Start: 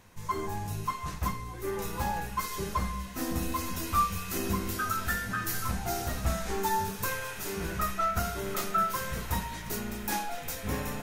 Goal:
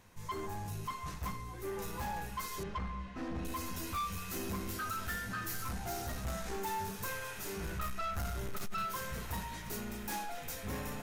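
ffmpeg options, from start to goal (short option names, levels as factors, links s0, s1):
-filter_complex "[0:a]asettb=1/sr,asplit=3[s0][s1][s2];[s0]atrim=end=2.634[s3];[s1]atrim=start=2.63:end=3.45,asetpts=PTS-STARTPTS,afade=t=in:d=0.004:c=qsin,afade=t=out:st=0.816:d=0.004:c=qsin,lowpass=2800[s4];[s2]atrim=start=3.446[s5];[s3][s4]acrossfade=d=0.004:c1=hsin:c2=qsin[s6];[s6][s5]acrossfade=d=0.004:c1=qsin:c2=hsin,asettb=1/sr,asplit=3[s7][s8][s9];[s7]atrim=end=7.414[s10];[s8]atrim=start=7.41:end=8.85,asetpts=PTS-STARTPTS,afade=t=in:d=0.004:c=qsin,afade=t=out:st=1.436:d=0.004:c=qsin,asubboost=boost=7:cutoff=160[s11];[s9]atrim=start=8.846[s12];[s10][s11]acrossfade=d=0.004:c1=hsin:c2=qsin[s13];[s13][s12]acrossfade=d=0.004:c1=qsin:c2=hsin,asoftclip=type=tanh:threshold=0.0355,volume=0.631"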